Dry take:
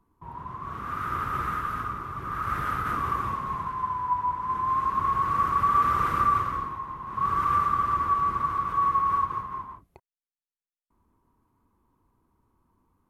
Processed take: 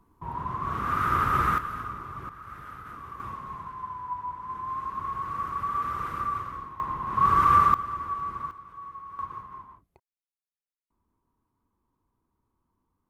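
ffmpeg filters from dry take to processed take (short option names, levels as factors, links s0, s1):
-af "asetnsamples=n=441:p=0,asendcmd='1.58 volume volume -3.5dB;2.29 volume volume -14dB;3.2 volume volume -7.5dB;6.8 volume volume 5dB;7.74 volume volume -7.5dB;8.51 volume volume -18dB;9.19 volume volume -8dB',volume=1.88"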